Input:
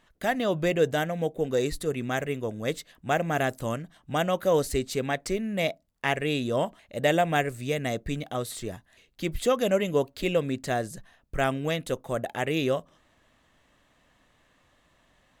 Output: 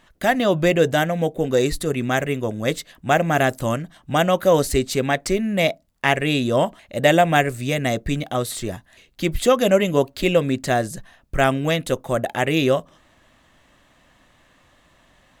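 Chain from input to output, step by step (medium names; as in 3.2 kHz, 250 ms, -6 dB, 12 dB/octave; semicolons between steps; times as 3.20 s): band-stop 450 Hz, Q 12; trim +8 dB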